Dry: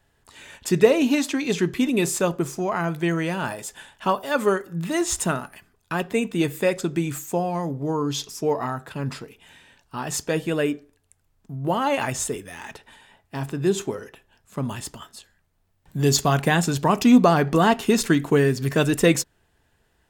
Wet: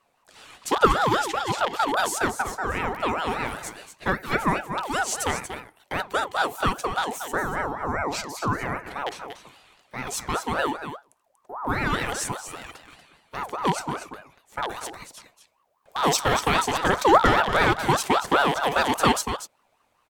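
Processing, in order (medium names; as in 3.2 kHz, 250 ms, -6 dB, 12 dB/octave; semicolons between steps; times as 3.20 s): rattle on loud lows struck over -24 dBFS, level -16 dBFS; short-mantissa float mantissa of 8-bit; on a send: delay 237 ms -9.5 dB; on the sum: ring modulator with a swept carrier 850 Hz, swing 35%, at 5 Hz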